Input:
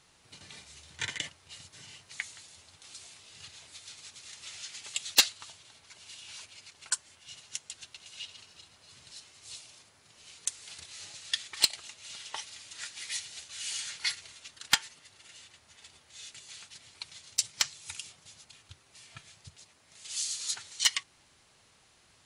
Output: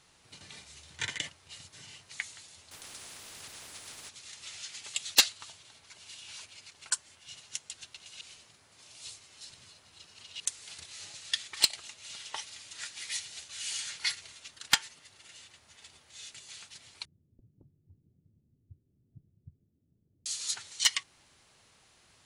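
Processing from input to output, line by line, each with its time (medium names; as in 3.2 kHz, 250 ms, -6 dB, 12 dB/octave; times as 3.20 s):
2.71–4.09 s: spectrum-flattening compressor 4:1
8.21–10.40 s: reverse
17.05–20.26 s: inverse Chebyshev low-pass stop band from 1.8 kHz, stop band 80 dB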